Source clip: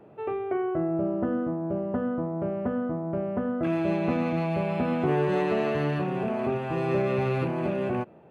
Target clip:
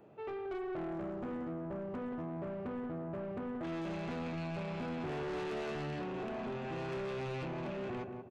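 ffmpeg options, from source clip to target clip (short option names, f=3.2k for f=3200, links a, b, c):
-filter_complex "[0:a]aresample=16000,asoftclip=type=hard:threshold=-22.5dB,aresample=44100,highshelf=f=4.1k:g=11,asplit=2[a][b];[b]adelay=181,lowpass=f=1.1k:p=1,volume=-7.5dB,asplit=2[c][d];[d]adelay=181,lowpass=f=1.1k:p=1,volume=0.38,asplit=2[e][f];[f]adelay=181,lowpass=f=1.1k:p=1,volume=0.38,asplit=2[g][h];[h]adelay=181,lowpass=f=1.1k:p=1,volume=0.38[i];[a][c][e][g][i]amix=inputs=5:normalize=0,asoftclip=type=tanh:threshold=-28.5dB,volume=-7.5dB"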